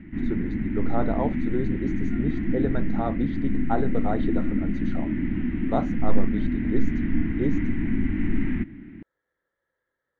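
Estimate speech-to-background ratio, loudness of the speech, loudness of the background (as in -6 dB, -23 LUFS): -4.0 dB, -31.5 LUFS, -27.5 LUFS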